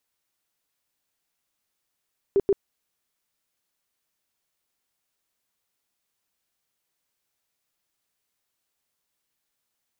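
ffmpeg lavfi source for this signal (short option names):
-f lavfi -i "aevalsrc='0.168*sin(2*PI*396*mod(t,0.13))*lt(mod(t,0.13),15/396)':d=0.26:s=44100"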